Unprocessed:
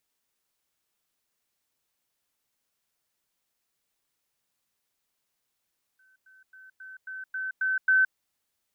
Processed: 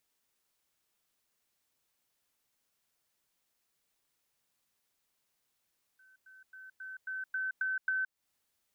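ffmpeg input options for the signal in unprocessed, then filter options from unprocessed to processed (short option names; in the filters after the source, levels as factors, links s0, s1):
-f lavfi -i "aevalsrc='pow(10,(-59.5+6*floor(t/0.27))/20)*sin(2*PI*1530*t)*clip(min(mod(t,0.27),0.17-mod(t,0.27))/0.005,0,1)':d=2.16:s=44100"
-af "acompressor=threshold=0.0224:ratio=5"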